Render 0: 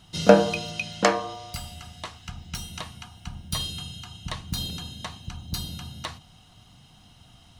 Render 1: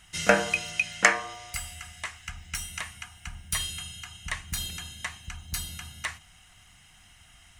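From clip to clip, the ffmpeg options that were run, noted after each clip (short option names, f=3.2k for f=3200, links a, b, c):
-af "equalizer=f=125:t=o:w=1:g=-10,equalizer=f=250:t=o:w=1:g=-10,equalizer=f=500:t=o:w=1:g=-8,equalizer=f=1k:t=o:w=1:g=-5,equalizer=f=2k:t=o:w=1:g=12,equalizer=f=4k:t=o:w=1:g=-11,equalizer=f=8k:t=o:w=1:g=8,volume=1dB"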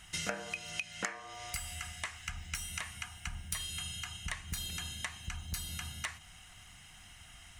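-af "acompressor=threshold=-36dB:ratio=8,volume=1dB"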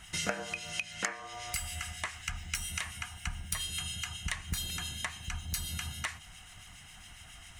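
-filter_complex "[0:a]acrossover=split=1800[a][b];[a]aeval=exprs='val(0)*(1-0.5/2+0.5/2*cos(2*PI*7.3*n/s))':c=same[c];[b]aeval=exprs='val(0)*(1-0.5/2-0.5/2*cos(2*PI*7.3*n/s))':c=same[d];[c][d]amix=inputs=2:normalize=0,volume=5.5dB"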